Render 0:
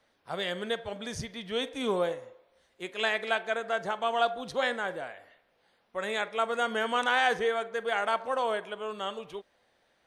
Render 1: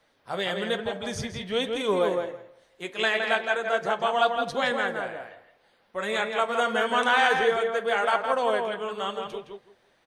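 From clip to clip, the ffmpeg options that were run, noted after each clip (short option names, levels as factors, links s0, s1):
-filter_complex "[0:a]flanger=delay=5.8:depth=5.1:regen=-45:speed=1.1:shape=triangular,asplit=2[s0][s1];[s1]adelay=165,lowpass=f=2700:p=1,volume=0.631,asplit=2[s2][s3];[s3]adelay=165,lowpass=f=2700:p=1,volume=0.18,asplit=2[s4][s5];[s5]adelay=165,lowpass=f=2700:p=1,volume=0.18[s6];[s2][s4][s6]amix=inputs=3:normalize=0[s7];[s0][s7]amix=inputs=2:normalize=0,volume=2.37"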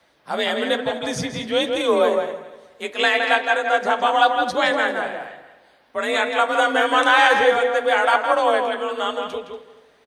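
-af "afreqshift=41,aecho=1:1:238|476|714:0.133|0.04|0.012,volume=2.11"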